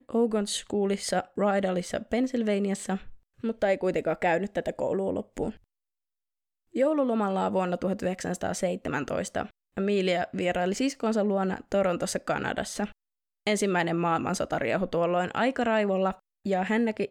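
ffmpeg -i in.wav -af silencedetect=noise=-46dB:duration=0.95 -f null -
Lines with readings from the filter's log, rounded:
silence_start: 5.57
silence_end: 6.74 | silence_duration: 1.17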